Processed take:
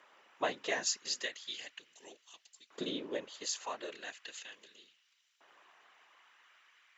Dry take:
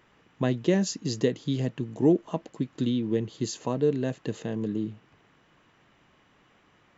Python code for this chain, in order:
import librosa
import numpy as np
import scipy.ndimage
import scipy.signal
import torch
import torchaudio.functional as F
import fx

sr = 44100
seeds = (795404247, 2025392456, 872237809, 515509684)

y = fx.whisperise(x, sr, seeds[0])
y = fx.filter_lfo_highpass(y, sr, shape='saw_up', hz=0.37, low_hz=570.0, high_hz=5000.0, q=1.0)